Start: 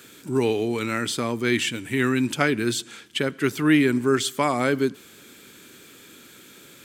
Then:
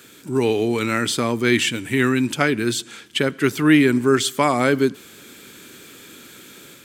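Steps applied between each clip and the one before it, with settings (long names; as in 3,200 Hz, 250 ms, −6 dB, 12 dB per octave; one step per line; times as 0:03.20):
automatic gain control gain up to 4 dB
level +1 dB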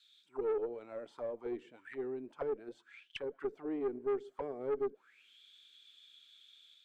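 envelope filter 430–4,000 Hz, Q 9.3, down, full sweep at −15.5 dBFS
tube saturation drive 22 dB, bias 0.3
level −6.5 dB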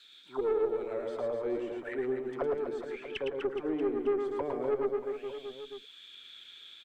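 reverse bouncing-ball delay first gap 110 ms, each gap 1.25×, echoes 5
multiband upward and downward compressor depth 40%
level +4.5 dB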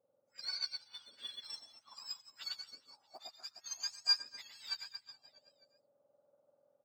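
frequency axis turned over on the octave scale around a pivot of 1,400 Hz
expander for the loud parts 2.5 to 1, over −47 dBFS
level +4 dB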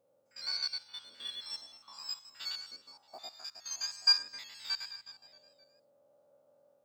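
spectrum averaged block by block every 50 ms
level +7 dB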